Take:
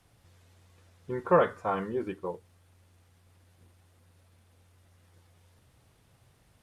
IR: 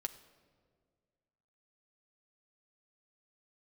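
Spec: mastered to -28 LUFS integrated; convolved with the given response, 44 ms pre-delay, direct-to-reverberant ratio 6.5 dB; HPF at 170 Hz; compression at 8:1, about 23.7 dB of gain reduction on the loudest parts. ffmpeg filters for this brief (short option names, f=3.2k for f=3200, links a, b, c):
-filter_complex "[0:a]highpass=170,acompressor=threshold=-43dB:ratio=8,asplit=2[a][b];[1:a]atrim=start_sample=2205,adelay=44[c];[b][c]afir=irnorm=-1:irlink=0,volume=-5dB[d];[a][d]amix=inputs=2:normalize=0,volume=19.5dB"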